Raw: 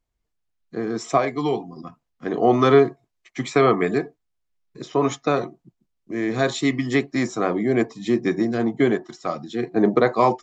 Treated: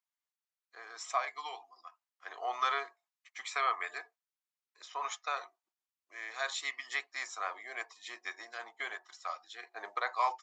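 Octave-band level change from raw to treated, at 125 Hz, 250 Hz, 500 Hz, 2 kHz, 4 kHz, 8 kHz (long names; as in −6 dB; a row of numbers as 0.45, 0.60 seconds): below −40 dB, below −40 dB, −26.0 dB, −8.0 dB, −8.0 dB, can't be measured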